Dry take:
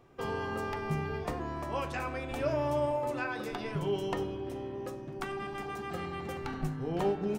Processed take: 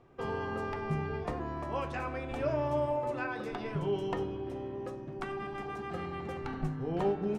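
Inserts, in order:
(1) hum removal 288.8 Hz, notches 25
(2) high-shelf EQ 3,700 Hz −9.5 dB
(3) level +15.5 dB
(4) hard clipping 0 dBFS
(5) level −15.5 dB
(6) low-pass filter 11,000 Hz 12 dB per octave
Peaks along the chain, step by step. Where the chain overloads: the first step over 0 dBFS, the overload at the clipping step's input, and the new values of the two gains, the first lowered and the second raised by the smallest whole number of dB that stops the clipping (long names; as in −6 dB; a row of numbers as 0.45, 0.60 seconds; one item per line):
−18.5, −20.0, −4.5, −4.5, −20.0, −20.0 dBFS
no step passes full scale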